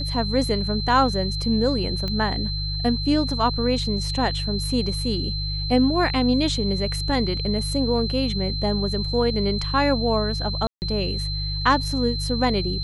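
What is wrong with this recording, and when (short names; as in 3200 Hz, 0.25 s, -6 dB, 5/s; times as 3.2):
hum 50 Hz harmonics 3 -28 dBFS
tone 4100 Hz -29 dBFS
2.08 pop -16 dBFS
10.67–10.82 gap 0.149 s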